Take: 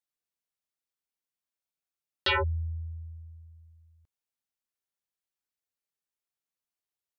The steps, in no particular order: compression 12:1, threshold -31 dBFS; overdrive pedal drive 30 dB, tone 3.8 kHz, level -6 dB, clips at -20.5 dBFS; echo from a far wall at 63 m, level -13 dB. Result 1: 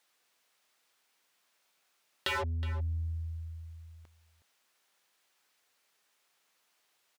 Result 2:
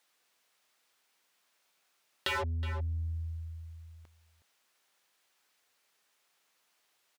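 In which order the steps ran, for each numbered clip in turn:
overdrive pedal > compression > echo from a far wall; overdrive pedal > echo from a far wall > compression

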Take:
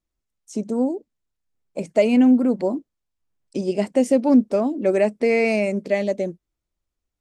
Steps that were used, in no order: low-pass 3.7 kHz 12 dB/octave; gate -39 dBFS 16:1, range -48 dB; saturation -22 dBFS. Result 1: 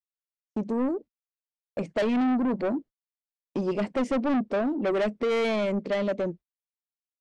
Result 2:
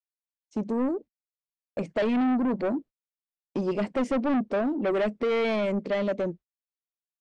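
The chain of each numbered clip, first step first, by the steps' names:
low-pass > gate > saturation; gate > saturation > low-pass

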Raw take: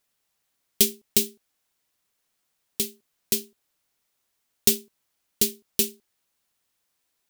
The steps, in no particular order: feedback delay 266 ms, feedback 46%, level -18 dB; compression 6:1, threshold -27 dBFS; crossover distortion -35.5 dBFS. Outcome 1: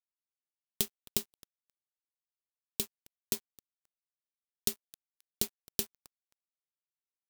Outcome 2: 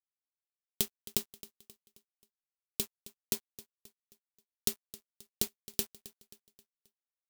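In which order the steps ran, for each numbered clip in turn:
compression > feedback delay > crossover distortion; compression > crossover distortion > feedback delay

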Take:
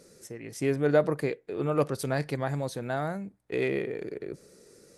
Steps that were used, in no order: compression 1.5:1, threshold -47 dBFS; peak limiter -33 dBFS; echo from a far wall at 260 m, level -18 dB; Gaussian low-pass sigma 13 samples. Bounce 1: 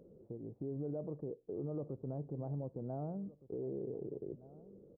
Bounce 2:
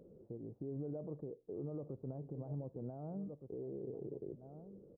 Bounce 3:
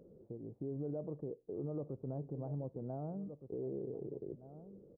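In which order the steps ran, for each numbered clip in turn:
Gaussian low-pass > compression > peak limiter > echo from a far wall; echo from a far wall > compression > peak limiter > Gaussian low-pass; echo from a far wall > compression > Gaussian low-pass > peak limiter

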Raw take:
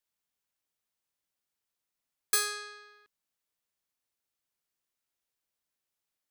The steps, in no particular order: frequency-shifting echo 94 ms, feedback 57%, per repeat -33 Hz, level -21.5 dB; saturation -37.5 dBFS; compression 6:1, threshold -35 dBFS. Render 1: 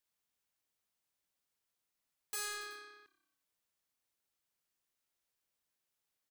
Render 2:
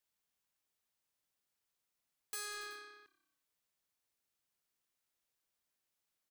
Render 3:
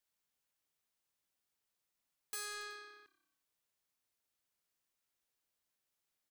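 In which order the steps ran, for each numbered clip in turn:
frequency-shifting echo > saturation > compression; frequency-shifting echo > compression > saturation; compression > frequency-shifting echo > saturation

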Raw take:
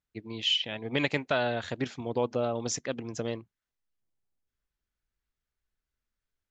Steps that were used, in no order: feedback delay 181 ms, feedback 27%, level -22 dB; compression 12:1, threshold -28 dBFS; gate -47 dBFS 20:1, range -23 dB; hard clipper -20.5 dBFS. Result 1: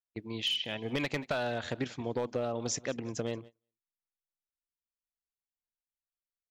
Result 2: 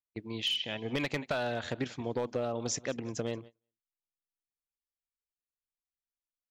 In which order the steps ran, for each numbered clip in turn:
hard clipper > feedback delay > compression > gate; feedback delay > hard clipper > compression > gate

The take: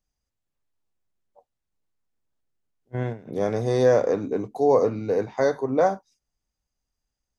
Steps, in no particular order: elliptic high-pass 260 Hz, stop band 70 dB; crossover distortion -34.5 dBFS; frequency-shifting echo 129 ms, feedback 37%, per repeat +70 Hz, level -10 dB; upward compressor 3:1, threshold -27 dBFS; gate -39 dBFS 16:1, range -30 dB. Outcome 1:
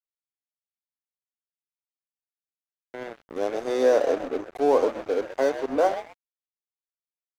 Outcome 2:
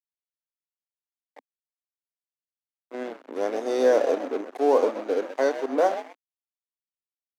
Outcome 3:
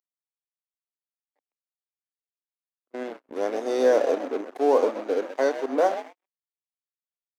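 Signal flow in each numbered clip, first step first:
gate > upward compressor > elliptic high-pass > frequency-shifting echo > crossover distortion; upward compressor > gate > frequency-shifting echo > crossover distortion > elliptic high-pass; frequency-shifting echo > upward compressor > crossover distortion > elliptic high-pass > gate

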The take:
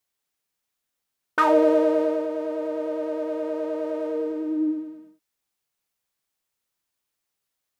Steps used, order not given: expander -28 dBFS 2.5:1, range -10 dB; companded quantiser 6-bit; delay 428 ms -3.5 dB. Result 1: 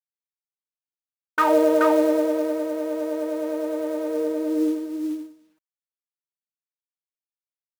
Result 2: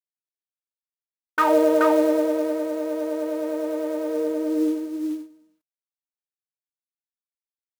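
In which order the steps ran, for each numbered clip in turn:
expander > companded quantiser > delay; companded quantiser > delay > expander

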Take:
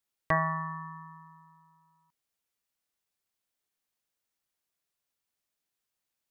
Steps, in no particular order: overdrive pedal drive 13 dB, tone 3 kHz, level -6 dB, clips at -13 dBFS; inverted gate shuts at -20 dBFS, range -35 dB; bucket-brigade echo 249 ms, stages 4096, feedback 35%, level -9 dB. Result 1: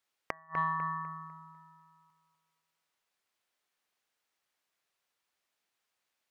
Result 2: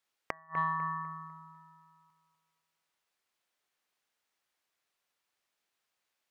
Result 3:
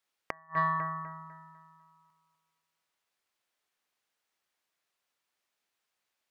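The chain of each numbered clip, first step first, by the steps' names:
inverted gate > bucket-brigade echo > overdrive pedal; inverted gate > overdrive pedal > bucket-brigade echo; bucket-brigade echo > inverted gate > overdrive pedal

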